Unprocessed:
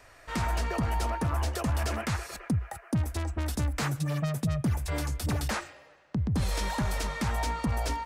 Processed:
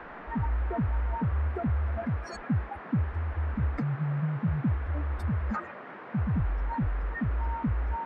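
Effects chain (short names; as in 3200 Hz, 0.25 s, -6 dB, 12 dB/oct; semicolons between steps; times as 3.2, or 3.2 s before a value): spectral contrast raised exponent 3.3; band noise 150–1700 Hz -45 dBFS; gain +1 dB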